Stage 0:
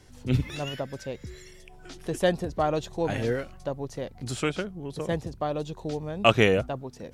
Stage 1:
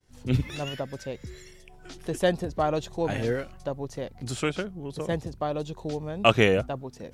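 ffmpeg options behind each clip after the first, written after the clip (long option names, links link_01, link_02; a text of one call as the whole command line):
ffmpeg -i in.wav -af "agate=range=-33dB:threshold=-46dB:ratio=3:detection=peak" out.wav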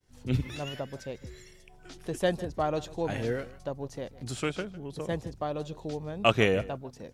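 ffmpeg -i in.wav -af "aecho=1:1:153:0.119,volume=-3.5dB" out.wav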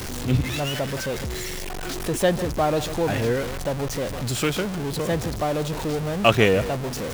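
ffmpeg -i in.wav -af "aeval=exprs='val(0)+0.5*0.0299*sgn(val(0))':channel_layout=same,volume=5dB" out.wav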